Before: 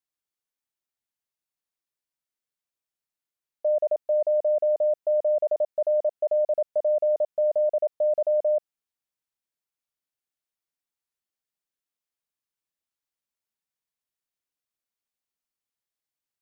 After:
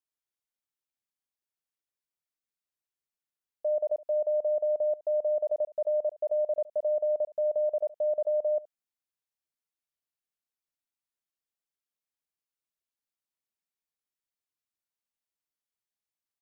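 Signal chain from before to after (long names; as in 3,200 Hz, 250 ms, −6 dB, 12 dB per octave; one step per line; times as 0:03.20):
single-tap delay 71 ms −20 dB
level −5 dB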